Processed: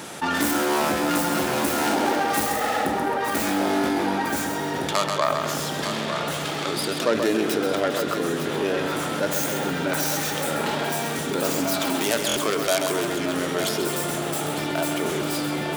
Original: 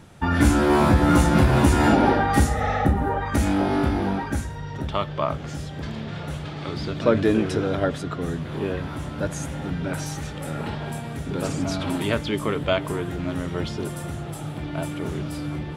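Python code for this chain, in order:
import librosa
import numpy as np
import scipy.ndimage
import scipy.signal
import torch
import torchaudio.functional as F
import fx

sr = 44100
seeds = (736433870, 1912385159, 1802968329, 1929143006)

p1 = fx.tracing_dist(x, sr, depth_ms=0.24)
p2 = scipy.signal.sosfilt(scipy.signal.butter(2, 310.0, 'highpass', fs=sr, output='sos'), p1)
p3 = fx.high_shelf(p2, sr, hz=4600.0, db=8.0)
p4 = fx.echo_feedback(p3, sr, ms=133, feedback_pct=44, wet_db=-9.0)
p5 = fx.rider(p4, sr, range_db=4, speed_s=2.0)
p6 = p5 + fx.echo_single(p5, sr, ms=904, db=-12.5, dry=0)
p7 = fx.buffer_glitch(p6, sr, at_s=(12.27,), block=1024, repeats=3)
p8 = fx.env_flatten(p7, sr, amount_pct=50)
y = p8 * 10.0 ** (-4.0 / 20.0)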